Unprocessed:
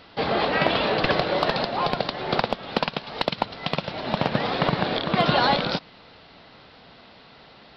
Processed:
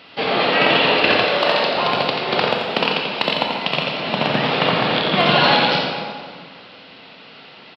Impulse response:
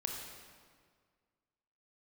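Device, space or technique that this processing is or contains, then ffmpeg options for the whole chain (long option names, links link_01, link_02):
PA in a hall: -filter_complex "[0:a]highpass=160,equalizer=frequency=2700:width_type=o:width=0.67:gain=8,aecho=1:1:86:0.501[link_01];[1:a]atrim=start_sample=2205[link_02];[link_01][link_02]afir=irnorm=-1:irlink=0,asettb=1/sr,asplit=3[link_03][link_04][link_05];[link_03]atrim=end=1.244[link_06];[link_04]atrim=start=1.24:end=1.77,asetpts=PTS-STARTPTS,afade=type=in:duration=0.004:curve=qsin,afade=type=out:start_time=0.526:duration=0.004:curve=qsin,highpass=frequency=270:poles=1[link_07];[link_05]atrim=start=1.766[link_08];[link_06][link_07]acrossfade=duration=0.004:curve1=hsin:curve2=qsin[link_09];[link_09][link_08]acrossfade=duration=0.004:curve1=qsin:curve2=hsin,volume=3dB"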